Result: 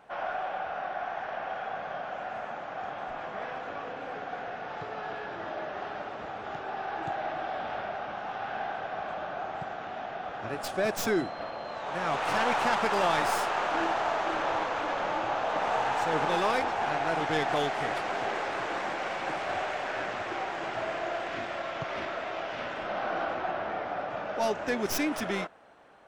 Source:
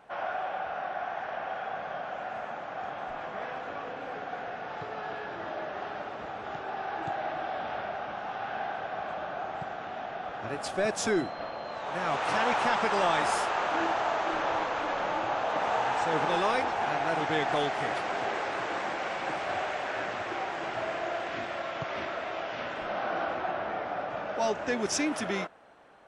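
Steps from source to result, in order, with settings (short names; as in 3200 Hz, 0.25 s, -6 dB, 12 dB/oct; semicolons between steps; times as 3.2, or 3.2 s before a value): tracing distortion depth 0.096 ms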